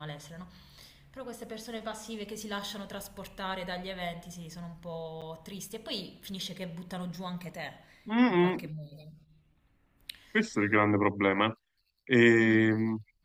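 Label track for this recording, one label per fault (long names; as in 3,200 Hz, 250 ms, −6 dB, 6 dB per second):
5.210000	5.220000	drop-out 7 ms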